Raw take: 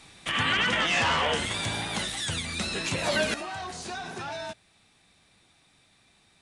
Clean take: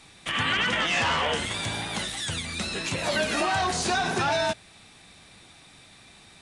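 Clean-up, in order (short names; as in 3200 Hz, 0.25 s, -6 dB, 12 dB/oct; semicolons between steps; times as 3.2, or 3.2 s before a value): gain 0 dB, from 3.34 s +11 dB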